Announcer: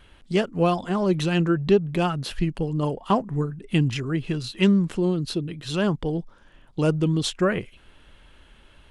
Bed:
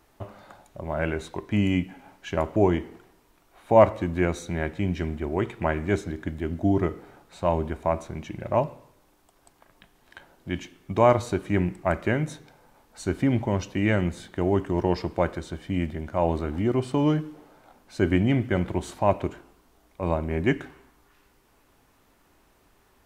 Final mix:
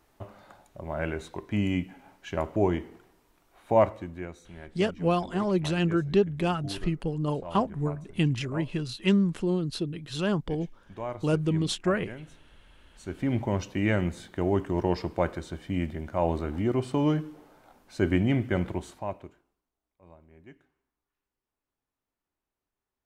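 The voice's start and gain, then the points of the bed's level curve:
4.45 s, -4.0 dB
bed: 3.73 s -4 dB
4.38 s -17 dB
12.79 s -17 dB
13.39 s -2.5 dB
18.67 s -2.5 dB
19.72 s -28 dB

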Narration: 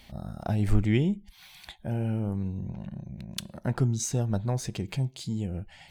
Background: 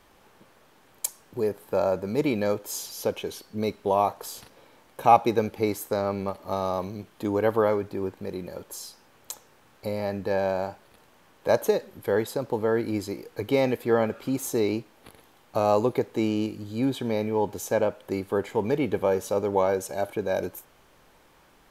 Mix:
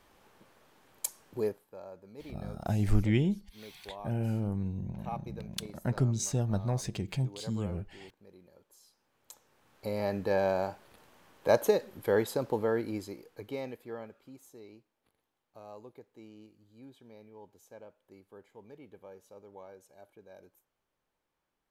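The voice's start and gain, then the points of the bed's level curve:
2.20 s, -2.5 dB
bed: 1.47 s -5 dB
1.69 s -22.5 dB
8.8 s -22.5 dB
10.02 s -2.5 dB
12.47 s -2.5 dB
14.58 s -26.5 dB

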